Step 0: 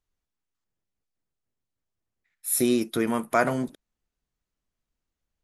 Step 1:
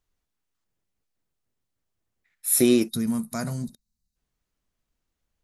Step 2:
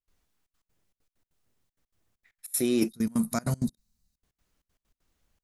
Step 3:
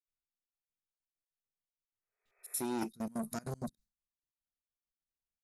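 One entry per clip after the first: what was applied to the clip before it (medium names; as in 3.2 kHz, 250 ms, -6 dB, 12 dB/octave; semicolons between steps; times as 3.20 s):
time-frequency box 2.89–4.16 s, 240–3700 Hz -17 dB; trim +4 dB
reverse; compression 16:1, threshold -28 dBFS, peak gain reduction 15 dB; reverse; trance gate ".xxxxx.x.xxx.x.x" 195 bpm -24 dB; trim +6.5 dB
gate with hold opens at -59 dBFS; spectral replace 1.89–2.52 s, 380–2600 Hz both; transformer saturation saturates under 1 kHz; trim -8 dB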